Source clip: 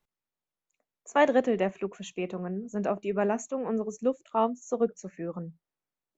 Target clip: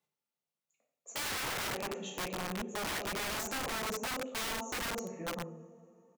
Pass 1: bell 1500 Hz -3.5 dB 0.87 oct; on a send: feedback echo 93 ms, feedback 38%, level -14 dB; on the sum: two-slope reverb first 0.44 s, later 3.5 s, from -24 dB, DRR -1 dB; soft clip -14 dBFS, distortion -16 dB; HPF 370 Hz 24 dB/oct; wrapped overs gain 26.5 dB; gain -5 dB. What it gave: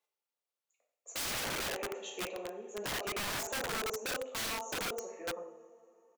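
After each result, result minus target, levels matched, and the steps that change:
soft clip: distortion -7 dB; 125 Hz band -4.0 dB
change: soft clip -21 dBFS, distortion -9 dB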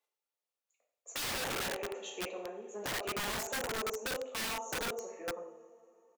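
125 Hz band -4.0 dB
change: HPF 130 Hz 24 dB/oct

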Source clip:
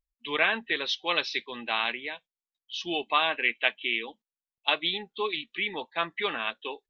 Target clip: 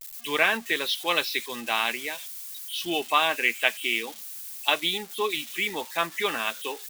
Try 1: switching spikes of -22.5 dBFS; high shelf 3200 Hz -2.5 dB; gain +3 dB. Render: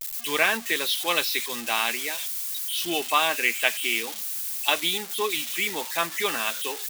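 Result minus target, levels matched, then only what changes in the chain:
switching spikes: distortion +8 dB
change: switching spikes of -30.5 dBFS

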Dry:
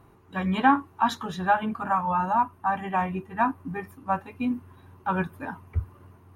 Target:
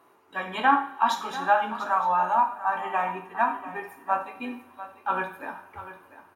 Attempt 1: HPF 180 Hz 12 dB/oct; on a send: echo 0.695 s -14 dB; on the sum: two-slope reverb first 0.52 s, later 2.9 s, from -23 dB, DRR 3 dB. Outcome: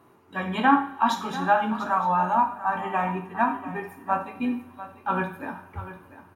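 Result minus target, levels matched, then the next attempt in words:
250 Hz band +8.5 dB
HPF 440 Hz 12 dB/oct; on a send: echo 0.695 s -14 dB; on the sum: two-slope reverb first 0.52 s, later 2.9 s, from -23 dB, DRR 3 dB

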